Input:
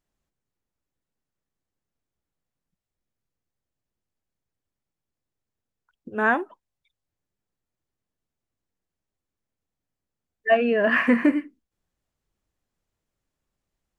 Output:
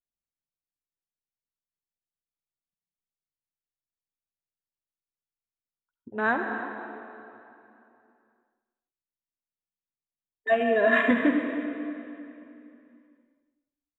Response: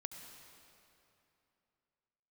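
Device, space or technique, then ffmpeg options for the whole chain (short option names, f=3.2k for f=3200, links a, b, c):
cave: -filter_complex "[0:a]afwtdn=0.0282,aecho=1:1:301:0.158[a];[1:a]atrim=start_sample=2205[b];[a][b]afir=irnorm=-1:irlink=0,asettb=1/sr,asplit=3[c][d][e];[c]atrim=end=10.604[f];[d]atrim=start=10.6:end=11.11,asetpts=PTS-STARTPTS,afade=t=in:d=0.004:c=qsin,afade=t=out:st=0.506:d=0.004:c=qsin,aecho=1:1:2.9:0.65,atrim=end_sample=22491[g];[e]atrim=start=11.106[h];[f][g]acrossfade=d=0.004:c1=hsin:c2=qsin[i];[i][h]acrossfade=d=0.004:c1=qsin:c2=hsin"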